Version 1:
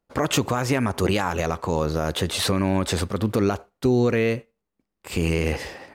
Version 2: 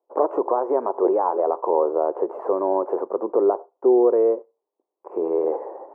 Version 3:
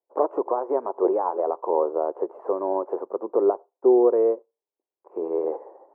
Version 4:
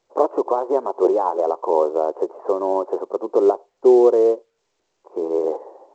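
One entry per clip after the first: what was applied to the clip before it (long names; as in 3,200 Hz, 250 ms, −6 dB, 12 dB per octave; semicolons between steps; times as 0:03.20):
elliptic band-pass filter 360–1,000 Hz, stop band 60 dB; level +6.5 dB
expander for the loud parts 1.5 to 1, over −38 dBFS
level +4.5 dB; A-law companding 128 kbit/s 16,000 Hz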